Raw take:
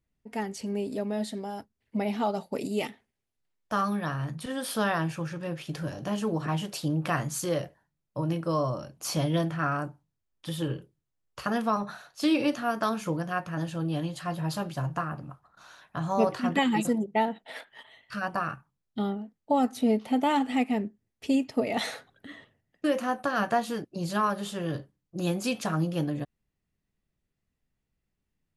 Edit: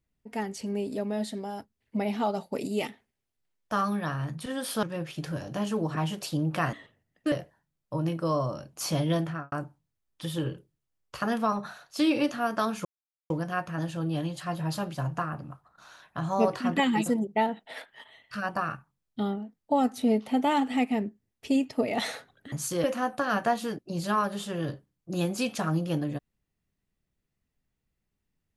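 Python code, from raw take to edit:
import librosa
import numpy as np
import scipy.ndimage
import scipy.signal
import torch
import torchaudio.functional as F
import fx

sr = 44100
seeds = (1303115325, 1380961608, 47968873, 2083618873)

y = fx.studio_fade_out(x, sr, start_s=9.5, length_s=0.26)
y = fx.edit(y, sr, fx.cut(start_s=4.83, length_s=0.51),
    fx.swap(start_s=7.24, length_s=0.32, other_s=22.31, other_length_s=0.59),
    fx.insert_silence(at_s=13.09, length_s=0.45), tone=tone)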